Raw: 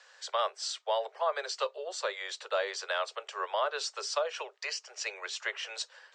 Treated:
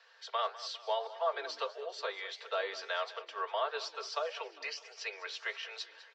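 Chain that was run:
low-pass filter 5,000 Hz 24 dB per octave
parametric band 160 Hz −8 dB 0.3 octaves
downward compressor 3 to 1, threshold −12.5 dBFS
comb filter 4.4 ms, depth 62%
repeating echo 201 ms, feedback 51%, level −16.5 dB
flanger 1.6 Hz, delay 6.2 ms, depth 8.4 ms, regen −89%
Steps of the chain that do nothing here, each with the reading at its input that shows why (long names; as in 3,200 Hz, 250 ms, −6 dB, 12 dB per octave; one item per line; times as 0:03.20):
parametric band 160 Hz: nothing at its input below 340 Hz
downward compressor, threshold −12.5 dBFS: peak of its input −17.5 dBFS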